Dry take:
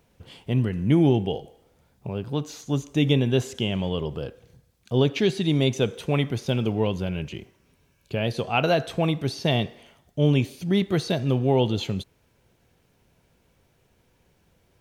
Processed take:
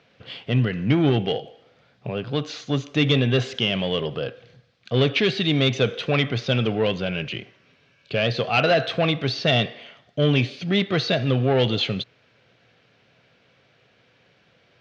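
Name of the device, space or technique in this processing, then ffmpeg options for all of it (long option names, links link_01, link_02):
overdrive pedal into a guitar cabinet: -filter_complex "[0:a]asplit=2[link_01][link_02];[link_02]highpass=frequency=720:poles=1,volume=17dB,asoftclip=type=tanh:threshold=-8.5dB[link_03];[link_01][link_03]amix=inputs=2:normalize=0,lowpass=frequency=6600:poles=1,volume=-6dB,highpass=100,equalizer=frequency=120:width_type=q:width=4:gain=8,equalizer=frequency=360:width_type=q:width=4:gain=-5,equalizer=frequency=920:width_type=q:width=4:gain=-10,lowpass=frequency=4600:width=0.5412,lowpass=frequency=4600:width=1.3066"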